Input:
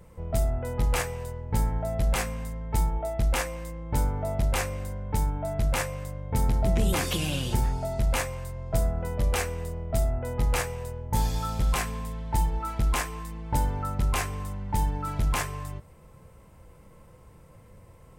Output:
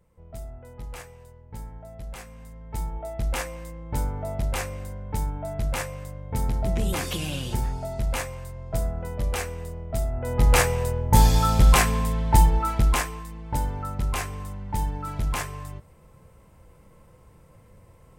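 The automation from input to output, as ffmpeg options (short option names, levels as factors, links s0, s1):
-af "volume=2.99,afade=t=in:st=2.25:d=1.16:silence=0.266073,afade=t=in:st=10.12:d=0.54:silence=0.281838,afade=t=out:st=12.28:d=0.96:silence=0.298538"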